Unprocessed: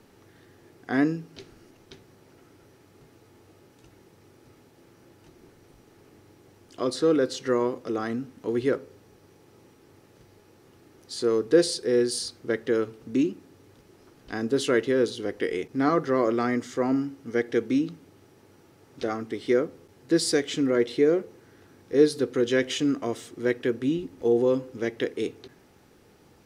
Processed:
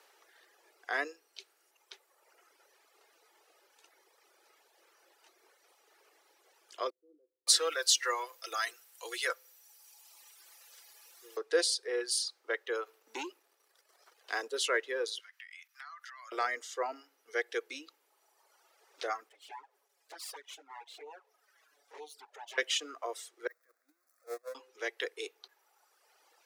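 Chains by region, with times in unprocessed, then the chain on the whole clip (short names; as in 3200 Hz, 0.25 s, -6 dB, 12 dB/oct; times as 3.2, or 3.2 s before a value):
6.9–11.37 tilt +4.5 dB/oct + comb 5.9 ms, depth 48% + bands offset in time lows, highs 0.57 s, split 260 Hz
12.86–14.48 HPF 180 Hz 24 dB/oct + sample leveller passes 1
15.19–16.32 HPF 1300 Hz 24 dB/oct + compressor 16:1, threshold -42 dBFS
19.29–22.58 minimum comb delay 7.1 ms + envelope flanger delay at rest 7.4 ms, full sweep at -17 dBFS + compressor 2:1, threshold -48 dBFS
23.47–24.55 zero-crossing step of -27.5 dBFS + gate -18 dBFS, range -26 dB + fixed phaser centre 600 Hz, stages 8
whole clip: reverb removal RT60 1.6 s; Bessel high-pass 780 Hz, order 8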